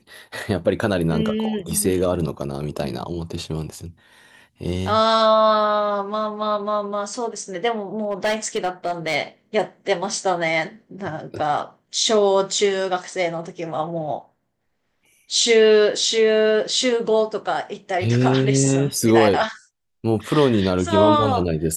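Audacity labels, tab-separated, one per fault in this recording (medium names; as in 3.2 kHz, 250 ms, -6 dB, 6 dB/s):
8.040000	9.160000	clipped -17 dBFS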